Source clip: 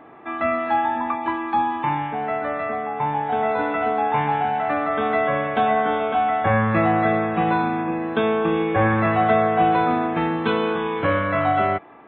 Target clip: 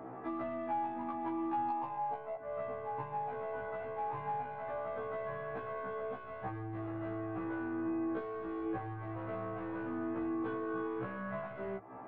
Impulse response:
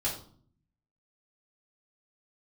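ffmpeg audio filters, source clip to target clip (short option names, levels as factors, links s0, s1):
-filter_complex "[0:a]equalizer=f=110:t=o:w=0.22:g=14,asoftclip=type=tanh:threshold=0.15,asettb=1/sr,asplit=3[s0][s1][s2];[s0]atrim=end=1.704[s3];[s1]atrim=start=1.7:end=2.36,asetpts=PTS-STARTPTS,afade=t=in:d=0.004:c=qsin,afade=t=out:st=0.656:d=0.004:c=qsin,equalizer=f=730:t=o:w=1.4:g=13.5[s4];[s2]atrim=start=2.356[s5];[s3][s4]acrossfade=d=0.004:c1=hsin:c2=qsin[s6];[s6][s5]acrossfade=d=0.004:c1=qsin:c2=hsin,acompressor=threshold=0.0224:ratio=16,highpass=63,asettb=1/sr,asplit=3[s7][s8][s9];[s7]atrim=end=8.194[s10];[s8]atrim=start=8.19:end=8.66,asetpts=PTS-STARTPTS,afade=t=in:d=0.004:c=qsin,afade=t=out:st=0.466:d=0.004:c=qsin,asoftclip=type=hard:threshold=0.0126[s11];[s9]atrim=start=8.656[s12];[s10][s11]acrossfade=d=0.004:c1=hsin:c2=qsin[s13];[s13][s12]acrossfade=d=0.004:c1=qsin:c2=hsin,lowpass=1200,aeval=exprs='0.0631*(cos(1*acos(clip(val(0)/0.0631,-1,1)))-cos(1*PI/2))+0.002*(cos(5*acos(clip(val(0)/0.0631,-1,1)))-cos(5*PI/2))+0.000794*(cos(6*acos(clip(val(0)/0.0631,-1,1)))-cos(6*PI/2))':c=same,afftfilt=real='re*1.73*eq(mod(b,3),0)':imag='im*1.73*eq(mod(b,3),0)':win_size=2048:overlap=0.75,volume=1.12"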